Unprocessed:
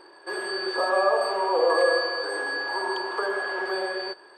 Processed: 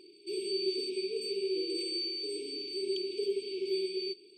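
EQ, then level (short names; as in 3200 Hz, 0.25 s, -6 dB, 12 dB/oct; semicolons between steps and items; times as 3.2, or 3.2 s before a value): brick-wall FIR band-stop 450–2200 Hz; low shelf 140 Hz -6.5 dB; high shelf 6200 Hz -7 dB; 0.0 dB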